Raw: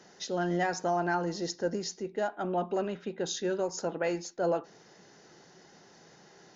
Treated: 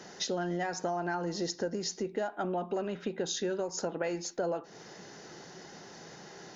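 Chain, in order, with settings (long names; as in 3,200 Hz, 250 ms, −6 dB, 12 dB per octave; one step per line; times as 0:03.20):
downward compressor, threshold −38 dBFS, peak gain reduction 12.5 dB
level +7.5 dB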